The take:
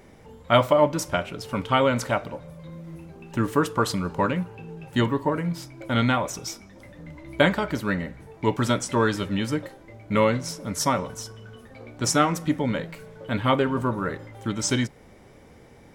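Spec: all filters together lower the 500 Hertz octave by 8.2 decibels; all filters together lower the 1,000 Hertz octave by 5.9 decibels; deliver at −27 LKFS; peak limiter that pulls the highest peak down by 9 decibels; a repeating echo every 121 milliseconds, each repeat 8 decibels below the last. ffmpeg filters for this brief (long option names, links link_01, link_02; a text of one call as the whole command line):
ffmpeg -i in.wav -af "equalizer=frequency=500:width_type=o:gain=-8.5,equalizer=frequency=1000:width_type=o:gain=-5.5,alimiter=limit=-18dB:level=0:latency=1,aecho=1:1:121|242|363|484|605:0.398|0.159|0.0637|0.0255|0.0102,volume=2.5dB" out.wav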